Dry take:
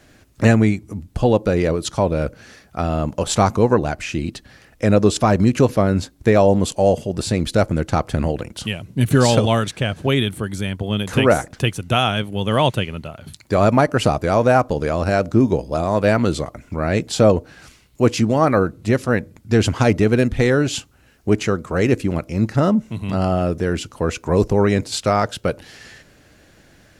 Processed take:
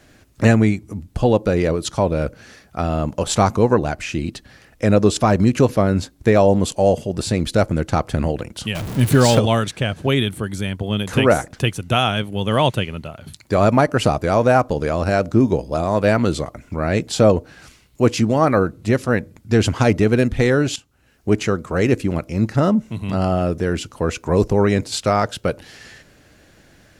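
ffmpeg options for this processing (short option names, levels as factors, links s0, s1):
-filter_complex "[0:a]asettb=1/sr,asplit=3[s0][s1][s2];[s0]atrim=end=8.754[s3];[s1]atrim=start=8.75:end=9.39,asetpts=PTS-STARTPTS,afade=t=in:d=0.004:c=qsin,afade=t=out:st=0.636:d=0.004:c=qsin,aeval=exprs='val(0)+0.5*0.0668*sgn(val(0))':c=same[s4];[s2]atrim=start=9.386[s5];[s3][s4]acrossfade=d=0.004:c1=hsin:c2=qsin[s6];[s6][s5]acrossfade=d=0.004:c1=qsin:c2=hsin,asplit=2[s7][s8];[s7]atrim=end=20.76,asetpts=PTS-STARTPTS,afade=t=out:st=20.756:d=0.004:c=hsin:silence=0.16788[s9];[s8]atrim=start=20.76,asetpts=PTS-STARTPTS,afade=t=in:d=0.58:silence=0.16788[s10];[s9][s10]concat=n=2:v=0:a=1"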